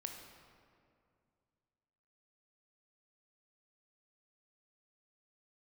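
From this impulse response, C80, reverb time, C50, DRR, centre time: 6.0 dB, 2.3 s, 4.5 dB, 3.0 dB, 53 ms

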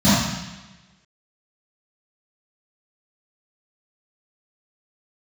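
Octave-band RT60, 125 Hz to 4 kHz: 1.2, 1.2, 1.1, 1.1, 1.3, 1.2 s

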